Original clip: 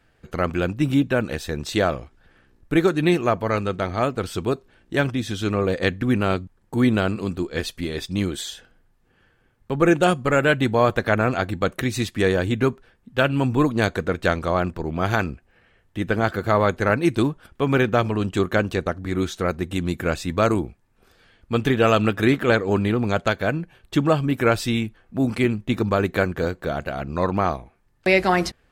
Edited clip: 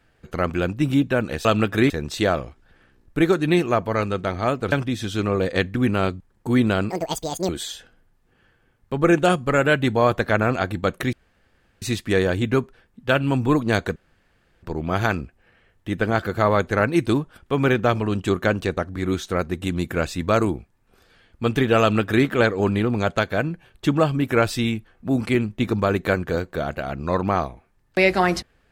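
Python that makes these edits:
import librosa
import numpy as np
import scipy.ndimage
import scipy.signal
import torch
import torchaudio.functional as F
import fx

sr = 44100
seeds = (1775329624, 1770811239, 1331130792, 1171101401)

y = fx.edit(x, sr, fx.cut(start_s=4.27, length_s=0.72),
    fx.speed_span(start_s=7.17, length_s=1.1, speed=1.87),
    fx.insert_room_tone(at_s=11.91, length_s=0.69),
    fx.room_tone_fill(start_s=14.05, length_s=0.67),
    fx.duplicate(start_s=21.9, length_s=0.45, to_s=1.45), tone=tone)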